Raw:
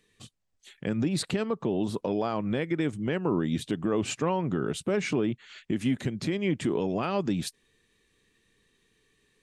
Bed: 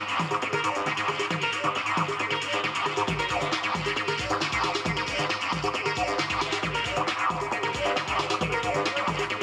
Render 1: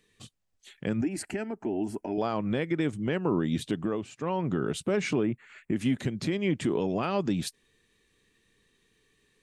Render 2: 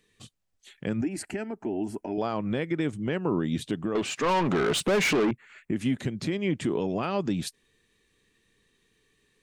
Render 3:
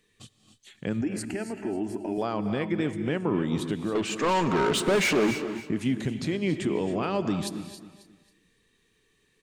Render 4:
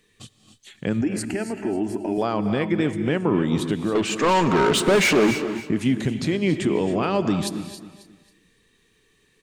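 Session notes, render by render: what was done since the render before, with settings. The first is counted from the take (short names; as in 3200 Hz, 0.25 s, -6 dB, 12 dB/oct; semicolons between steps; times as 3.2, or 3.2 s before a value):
1.01–2.18 fixed phaser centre 750 Hz, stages 8; 3.7–4.51 dip -16.5 dB, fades 0.39 s equal-power; 5.23–5.76 band shelf 4400 Hz -14 dB 1.3 oct
3.95–5.31 overdrive pedal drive 25 dB, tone 5500 Hz, clips at -17 dBFS
feedback echo 0.271 s, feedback 34%, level -13.5 dB; non-linear reverb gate 0.32 s rising, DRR 10 dB
gain +5.5 dB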